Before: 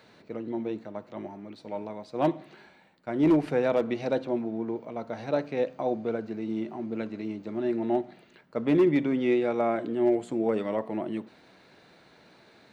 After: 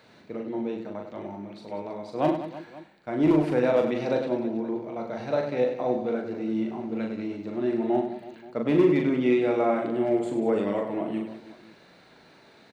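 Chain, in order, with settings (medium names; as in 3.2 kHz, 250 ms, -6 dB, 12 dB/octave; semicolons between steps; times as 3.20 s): reverse bouncing-ball echo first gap 40 ms, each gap 1.5×, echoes 5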